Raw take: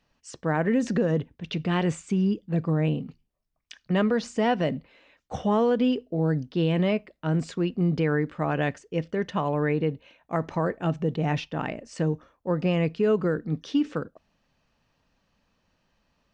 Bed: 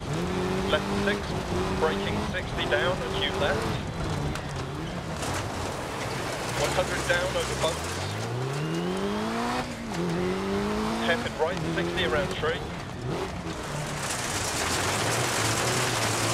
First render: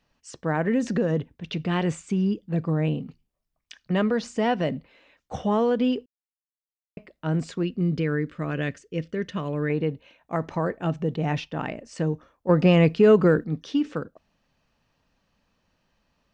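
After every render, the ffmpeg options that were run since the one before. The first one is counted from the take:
-filter_complex "[0:a]asettb=1/sr,asplit=3[a][b][c];[a]atrim=end=7.634[d];[b]atrim=start=7.63:end=9.7,asetpts=PTS-STARTPTS,afade=t=in:d=0.004:c=qsin,afade=t=out:st=2.066:d=0.004:c=qsin,equalizer=f=820:t=o:w=0.66:g=-14[e];[c]atrim=start=9.696[f];[d][e]acrossfade=d=0.004:c1=hsin:c2=qsin[g];[g][f]acrossfade=d=0.004:c1=qsin:c2=hsin,asettb=1/sr,asplit=3[h][i][j];[h]atrim=end=12.494[k];[i]atrim=start=12.49:end=13.44,asetpts=PTS-STARTPTS,afade=t=in:d=0.004:c=qsin,afade=t=out:st=0.946:d=0.004:c=qsin,acontrast=84[l];[j]atrim=start=13.436[m];[k][l]acrossfade=d=0.004:c1=hsin:c2=qsin[n];[n][m]acrossfade=d=0.004:c1=qsin:c2=hsin,asplit=3[o][p][q];[o]atrim=end=6.06,asetpts=PTS-STARTPTS,afade=t=out:st=6.056:d=0.004:c=hsin[r];[p]atrim=start=6.06:end=6.97,asetpts=PTS-STARTPTS,volume=0[s];[q]atrim=start=6.97,asetpts=PTS-STARTPTS,afade=t=in:d=0.004:c=hsin[t];[r][s][t]concat=n=3:v=0:a=1"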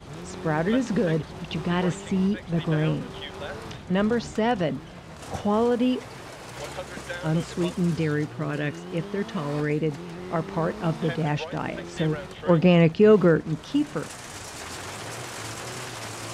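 -filter_complex "[1:a]volume=-9.5dB[a];[0:a][a]amix=inputs=2:normalize=0"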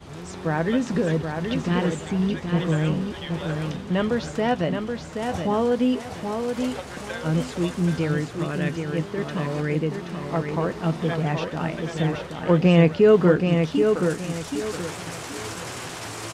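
-filter_complex "[0:a]asplit=2[a][b];[b]adelay=12,volume=-11.5dB[c];[a][c]amix=inputs=2:normalize=0,asplit=2[d][e];[e]aecho=0:1:776|1552|2328|3104:0.531|0.165|0.051|0.0158[f];[d][f]amix=inputs=2:normalize=0"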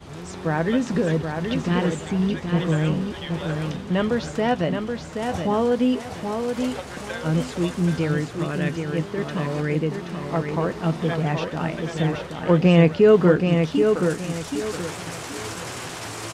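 -af "volume=1dB"

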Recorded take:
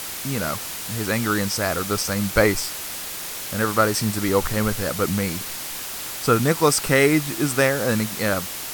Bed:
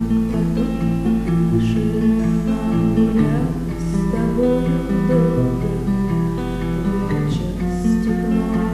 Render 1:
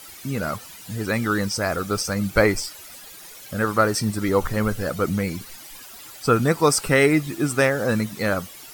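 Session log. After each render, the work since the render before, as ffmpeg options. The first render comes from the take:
-af "afftdn=nr=14:nf=-32"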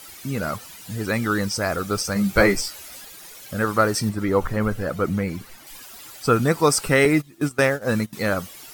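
-filter_complex "[0:a]asettb=1/sr,asplit=3[a][b][c];[a]atrim=end=2.144[d];[b]atrim=start=2.14:end=3.05,asetpts=PTS-STARTPTS,afade=t=in:d=0.004:c=qsin,afade=t=out:st=0.906:d=0.004:c=qsin,asplit=2[e][f];[f]adelay=15,volume=-3dB[g];[e][g]amix=inputs=2:normalize=0,atrim=end_sample=40131[h];[c]atrim=start=3.046[i];[d][h]acrossfade=d=0.004:c1=hsin:c2=qsin[j];[j][i]acrossfade=d=0.004:c1=qsin:c2=hsin,asettb=1/sr,asplit=3[k][l][m];[k]atrim=end=4.094[n];[l]atrim=start=4.09:end=5.67,asetpts=PTS-STARTPTS,afade=t=in:d=0.004:c=qsin,afade=t=out:st=1.576:d=0.004:c=qsin,acrossover=split=2600[o][p];[p]acompressor=threshold=-45dB:ratio=4:attack=1:release=60[q];[o][q]amix=inputs=2:normalize=0[r];[m]atrim=start=5.666[s];[n][r]acrossfade=d=0.004:c1=hsin:c2=qsin[t];[t][s]acrossfade=d=0.004:c1=qsin:c2=hsin,asettb=1/sr,asplit=3[u][v][w];[u]atrim=end=7.054[x];[v]atrim=start=7.05:end=8.13,asetpts=PTS-STARTPTS,afade=t=in:d=0.004:c=qsin,afade=t=out:st=1.076:d=0.004:c=qsin,agate=range=-18dB:threshold=-24dB:ratio=16:release=100:detection=peak[y];[w]atrim=start=8.126[z];[x][y]acrossfade=d=0.004:c1=hsin:c2=qsin[aa];[aa][z]acrossfade=d=0.004:c1=qsin:c2=hsin"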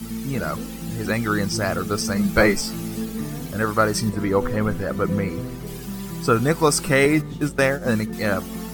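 -filter_complex "[1:a]volume=-13dB[a];[0:a][a]amix=inputs=2:normalize=0"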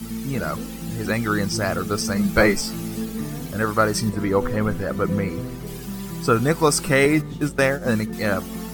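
-af anull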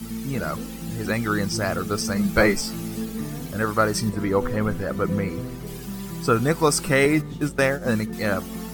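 -af "volume=-1.5dB"

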